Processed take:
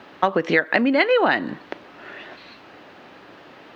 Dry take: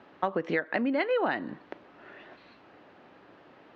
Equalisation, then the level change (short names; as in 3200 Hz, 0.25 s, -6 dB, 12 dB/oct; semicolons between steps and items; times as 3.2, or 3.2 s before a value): high shelf 2500 Hz +9.5 dB; +8.5 dB